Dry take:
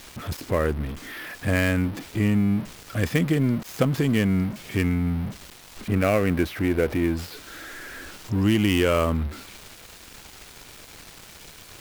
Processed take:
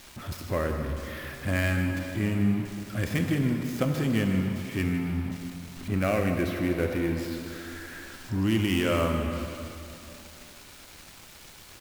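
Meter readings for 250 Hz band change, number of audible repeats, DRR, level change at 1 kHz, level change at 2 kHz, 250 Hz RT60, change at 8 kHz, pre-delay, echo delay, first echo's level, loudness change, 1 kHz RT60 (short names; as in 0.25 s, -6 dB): -3.5 dB, 1, 3.5 dB, -3.5 dB, -3.5 dB, 3.0 s, -3.5 dB, 12 ms, 0.155 s, -13.5 dB, -4.5 dB, 2.9 s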